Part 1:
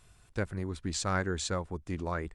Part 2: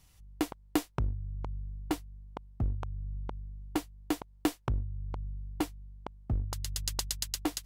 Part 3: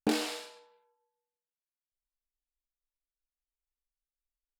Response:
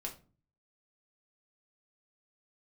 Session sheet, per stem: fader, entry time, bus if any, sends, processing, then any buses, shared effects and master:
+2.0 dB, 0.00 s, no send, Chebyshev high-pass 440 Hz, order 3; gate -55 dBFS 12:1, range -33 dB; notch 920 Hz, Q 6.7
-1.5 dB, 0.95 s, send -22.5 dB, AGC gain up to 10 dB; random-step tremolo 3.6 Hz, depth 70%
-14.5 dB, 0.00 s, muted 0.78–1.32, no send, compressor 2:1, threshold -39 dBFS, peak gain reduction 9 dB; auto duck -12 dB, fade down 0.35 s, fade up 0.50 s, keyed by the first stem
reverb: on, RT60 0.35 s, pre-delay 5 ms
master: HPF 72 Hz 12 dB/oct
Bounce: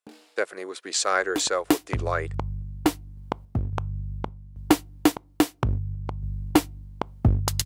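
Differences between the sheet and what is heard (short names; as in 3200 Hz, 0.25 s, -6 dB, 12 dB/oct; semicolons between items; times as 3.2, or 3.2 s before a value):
stem 1 +2.0 dB -> +10.0 dB; stem 2 -1.5 dB -> +4.5 dB; stem 3 -14.5 dB -> -8.0 dB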